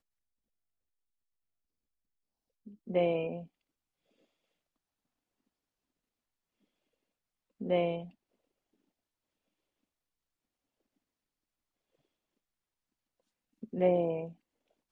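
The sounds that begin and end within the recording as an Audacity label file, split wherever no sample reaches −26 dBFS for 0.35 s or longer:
2.960000	3.250000	sound
7.700000	7.940000	sound
13.810000	14.130000	sound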